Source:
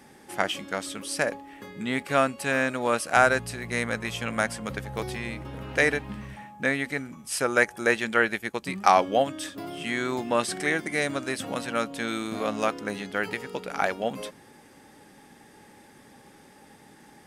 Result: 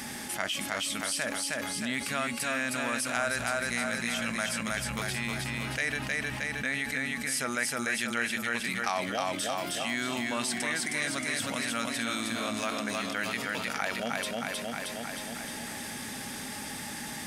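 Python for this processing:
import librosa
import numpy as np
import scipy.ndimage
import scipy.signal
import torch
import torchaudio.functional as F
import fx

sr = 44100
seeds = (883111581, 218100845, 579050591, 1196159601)

p1 = fx.tone_stack(x, sr, knobs='5-5-5')
p2 = fx.small_body(p1, sr, hz=(240.0, 630.0), ring_ms=85, db=9)
p3 = p2 + fx.echo_feedback(p2, sr, ms=313, feedback_pct=47, wet_db=-4, dry=0)
y = fx.env_flatten(p3, sr, amount_pct=70)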